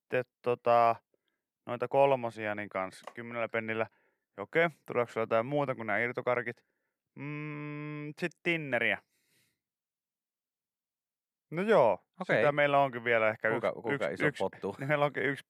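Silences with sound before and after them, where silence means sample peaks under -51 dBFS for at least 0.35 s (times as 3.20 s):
0.98–1.67 s
3.87–4.38 s
6.57–7.17 s
8.99–11.52 s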